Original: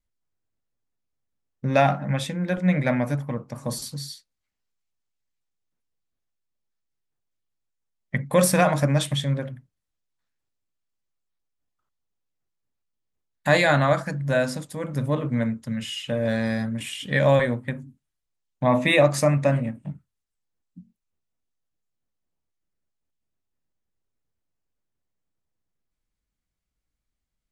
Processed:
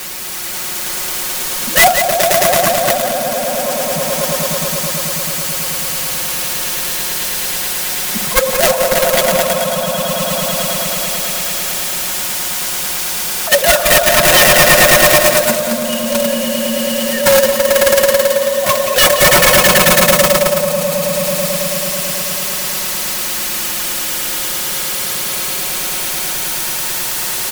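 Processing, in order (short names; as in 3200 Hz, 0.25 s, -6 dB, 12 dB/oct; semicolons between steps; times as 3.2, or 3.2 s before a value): sine-wave speech; high shelf 2100 Hz +5.5 dB; fixed phaser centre 870 Hz, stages 4; requantised 6-bit, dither triangular; on a send: swelling echo 0.109 s, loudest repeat 5, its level -4.5 dB; on the sum: wrapped overs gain 13.5 dB; in parallel at -1.5 dB: negative-ratio compressor -27 dBFS, ratio -0.5; on the sum: gate -17 dBFS, range -15 dB; comb 5.5 ms; echo 0.175 s -11 dB; sine folder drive 5 dB, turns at -11.5 dBFS; gain +8 dB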